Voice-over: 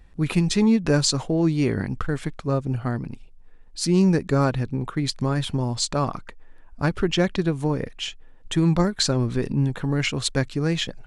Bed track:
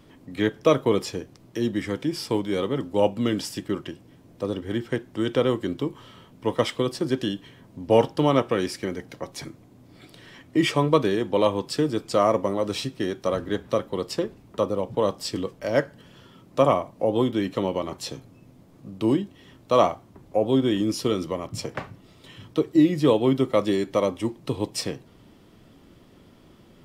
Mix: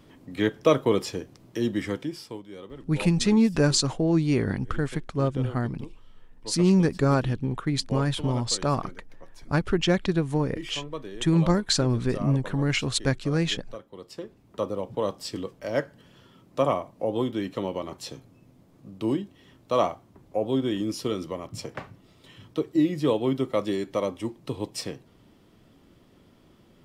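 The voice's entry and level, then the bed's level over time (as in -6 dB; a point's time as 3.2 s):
2.70 s, -1.5 dB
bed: 1.91 s -1 dB
2.44 s -16.5 dB
13.89 s -16.5 dB
14.64 s -4.5 dB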